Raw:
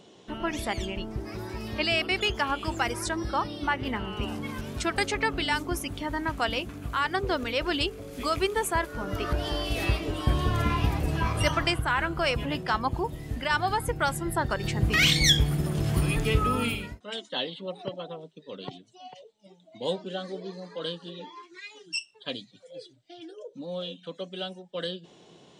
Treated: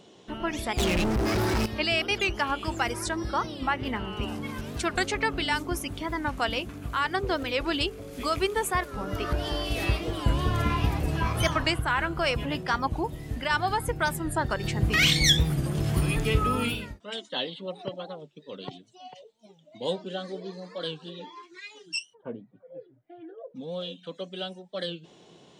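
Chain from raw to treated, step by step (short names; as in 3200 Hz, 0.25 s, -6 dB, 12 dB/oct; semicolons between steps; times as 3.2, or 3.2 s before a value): 0.78–1.66 sample leveller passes 5; 22.14–23.56 LPF 1200 Hz -> 2100 Hz 24 dB/oct; record warp 45 rpm, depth 160 cents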